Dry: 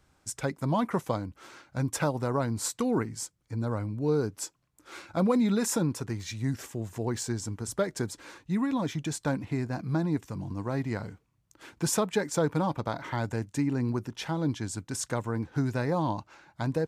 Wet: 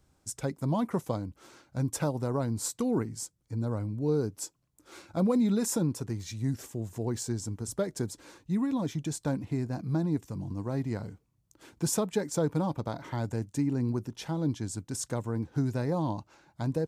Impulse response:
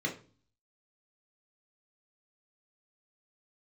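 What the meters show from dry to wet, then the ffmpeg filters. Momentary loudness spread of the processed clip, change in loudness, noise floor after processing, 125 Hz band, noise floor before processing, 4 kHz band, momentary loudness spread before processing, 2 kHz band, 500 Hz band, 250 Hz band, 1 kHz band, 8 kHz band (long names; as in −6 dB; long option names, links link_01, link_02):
8 LU, −1.0 dB, −72 dBFS, 0.0 dB, −71 dBFS, −3.5 dB, 9 LU, −7.5 dB, −2.0 dB, −0.5 dB, −5.0 dB, −1.5 dB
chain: -af "equalizer=frequency=1800:width_type=o:width=2.4:gain=-8"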